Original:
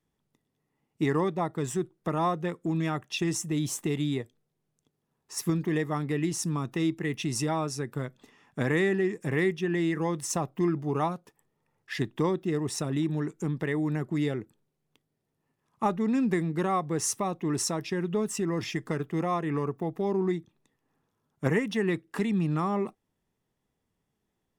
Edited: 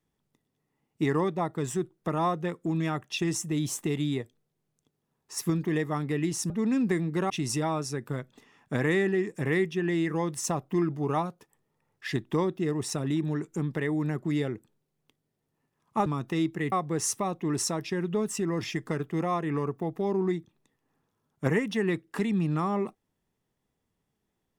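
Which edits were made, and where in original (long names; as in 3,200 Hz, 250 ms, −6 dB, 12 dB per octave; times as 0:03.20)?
0:06.50–0:07.16: swap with 0:15.92–0:16.72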